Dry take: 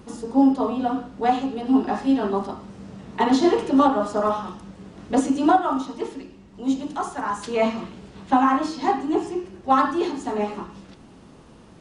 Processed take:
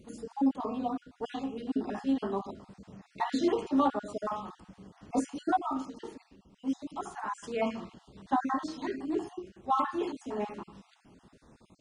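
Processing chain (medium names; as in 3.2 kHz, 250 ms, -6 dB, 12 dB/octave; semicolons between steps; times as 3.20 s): random holes in the spectrogram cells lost 31%; trim -9 dB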